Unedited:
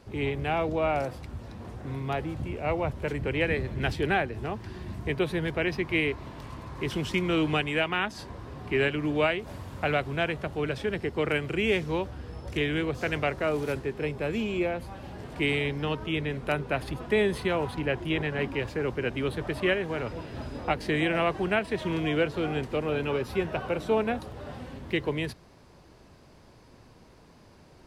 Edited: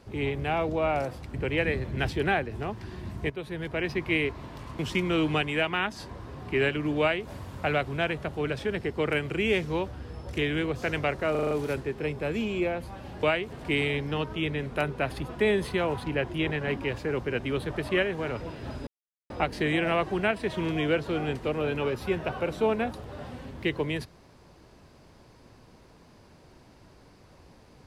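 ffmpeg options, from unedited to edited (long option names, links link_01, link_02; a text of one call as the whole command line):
ffmpeg -i in.wav -filter_complex "[0:a]asplit=12[link_01][link_02][link_03][link_04][link_05][link_06][link_07][link_08][link_09][link_10][link_11][link_12];[link_01]atrim=end=1.342[link_13];[link_02]atrim=start=3.168:end=5.13,asetpts=PTS-STARTPTS,afade=type=out:start_time=1.958:duration=0.004:curve=hsin:silence=0.237137[link_14];[link_03]atrim=start=5.13:end=6.622,asetpts=PTS-STARTPTS,afade=type=in:duration=0.69:silence=0.237137[link_15];[link_04]atrim=start=6.978:end=13.542[link_16];[link_05]atrim=start=13.498:end=13.542[link_17];[link_06]atrim=start=13.498:end=13.542[link_18];[link_07]atrim=start=13.498:end=13.542[link_19];[link_08]atrim=start=13.498:end=13.542[link_20];[link_09]atrim=start=13.498:end=15.222[link_21];[link_10]atrim=start=9.188:end=9.472[link_22];[link_11]atrim=start=15.218:end=20.58,asetpts=PTS-STARTPTS,afade=type=out:start_time=5.358:duration=0.004:curve=hsin,apad=pad_dur=0.43[link_23];[link_12]atrim=start=20.58,asetpts=PTS-STARTPTS,afade=type=in:duration=0.004:curve=hsin[link_24];[link_14][link_15]concat=n=2:v=0:a=1[link_25];[link_13][link_25]acrossfade=duration=0.004:curve1=hsin:curve2=hsin[link_26];[link_26][link_16]acrossfade=duration=0.004:curve1=hsin:curve2=hsin[link_27];[link_27][link_17]acrossfade=duration=0.004:curve1=hsin:curve2=hsin[link_28];[link_28][link_18]acrossfade=duration=0.004:curve1=hsin:curve2=hsin[link_29];[link_29][link_19]acrossfade=duration=0.004:curve1=hsin:curve2=hsin[link_30];[link_30][link_20]acrossfade=duration=0.004:curve1=hsin:curve2=hsin[link_31];[link_31][link_21]acrossfade=duration=0.004:curve1=hsin:curve2=hsin[link_32];[link_32][link_22]acrossfade=duration=0.004:curve1=hsin:curve2=hsin[link_33];[link_23][link_24]concat=n=2:v=0:a=1[link_34];[link_33][link_34]acrossfade=duration=0.004:curve1=hsin:curve2=hsin" out.wav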